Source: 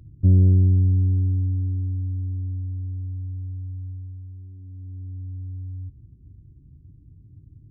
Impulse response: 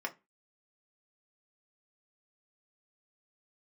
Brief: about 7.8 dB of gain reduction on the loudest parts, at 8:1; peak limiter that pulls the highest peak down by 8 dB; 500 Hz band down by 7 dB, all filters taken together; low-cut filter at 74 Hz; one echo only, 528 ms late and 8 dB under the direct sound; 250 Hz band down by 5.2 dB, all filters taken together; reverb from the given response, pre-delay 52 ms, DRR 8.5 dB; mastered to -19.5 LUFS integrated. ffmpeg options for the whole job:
-filter_complex "[0:a]highpass=74,equalizer=f=250:t=o:g=-6,equalizer=f=500:t=o:g=-7.5,acompressor=threshold=0.0794:ratio=8,alimiter=limit=0.0708:level=0:latency=1,aecho=1:1:528:0.398,asplit=2[s0][s1];[1:a]atrim=start_sample=2205,adelay=52[s2];[s1][s2]afir=irnorm=-1:irlink=0,volume=0.266[s3];[s0][s3]amix=inputs=2:normalize=0,volume=3.55"

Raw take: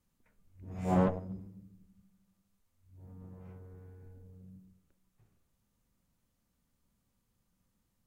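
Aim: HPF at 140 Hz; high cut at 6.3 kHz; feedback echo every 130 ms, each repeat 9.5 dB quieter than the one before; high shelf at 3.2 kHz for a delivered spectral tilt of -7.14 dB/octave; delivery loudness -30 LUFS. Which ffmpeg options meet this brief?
-af "highpass=140,lowpass=6300,highshelf=f=3200:g=-7,aecho=1:1:130|260|390|520:0.335|0.111|0.0365|0.012,volume=1.33"

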